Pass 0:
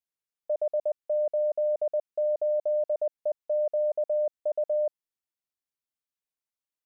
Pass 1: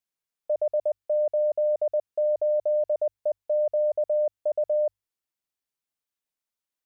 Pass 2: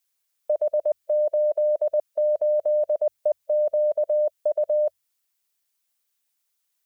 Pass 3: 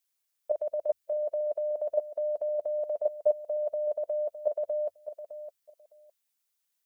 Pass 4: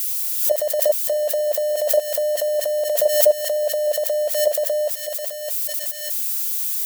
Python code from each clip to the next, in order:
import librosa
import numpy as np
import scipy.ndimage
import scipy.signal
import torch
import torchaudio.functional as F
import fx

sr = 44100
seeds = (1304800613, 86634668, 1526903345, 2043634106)

y1 = fx.hum_notches(x, sr, base_hz=50, count=2)
y1 = y1 * 10.0 ** (2.5 / 20.0)
y2 = fx.hpss(y1, sr, part='harmonic', gain_db=-3)
y2 = fx.tilt_eq(y2, sr, slope=2.5)
y2 = y2 * 10.0 ** (7.0 / 20.0)
y3 = fx.level_steps(y2, sr, step_db=10)
y3 = fx.echo_feedback(y3, sr, ms=610, feedback_pct=17, wet_db=-11.5)
y4 = y3 + 0.5 * 10.0 ** (-30.0 / 20.0) * np.diff(np.sign(y3), prepend=np.sign(y3[:1]))
y4 = fx.pre_swell(y4, sr, db_per_s=56.0)
y4 = y4 * 10.0 ** (9.0 / 20.0)